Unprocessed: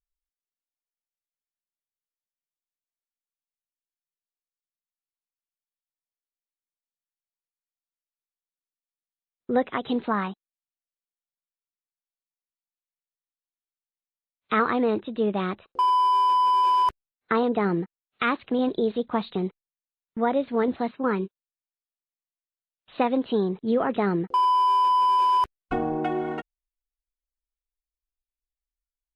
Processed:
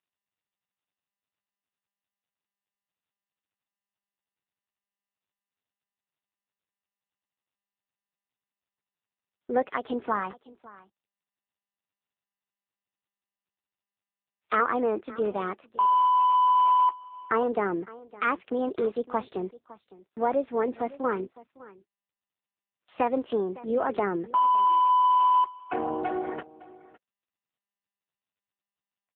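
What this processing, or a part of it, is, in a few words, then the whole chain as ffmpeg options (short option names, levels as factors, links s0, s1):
satellite phone: -af "highpass=330,lowpass=3000,aecho=1:1:559:0.106" -ar 8000 -c:a libopencore_amrnb -b:a 6700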